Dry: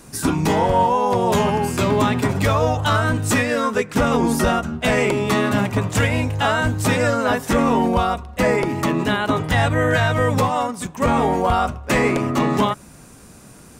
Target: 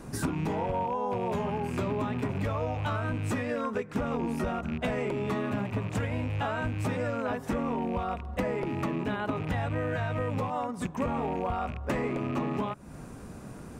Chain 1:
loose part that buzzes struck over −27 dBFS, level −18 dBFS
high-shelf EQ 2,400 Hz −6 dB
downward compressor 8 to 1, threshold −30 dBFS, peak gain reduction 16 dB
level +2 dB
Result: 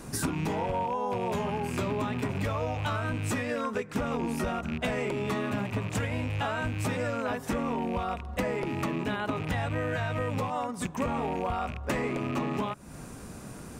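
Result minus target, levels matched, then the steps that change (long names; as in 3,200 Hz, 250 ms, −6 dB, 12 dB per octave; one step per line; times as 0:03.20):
4,000 Hz band +4.5 dB
change: high-shelf EQ 2,400 Hz −14 dB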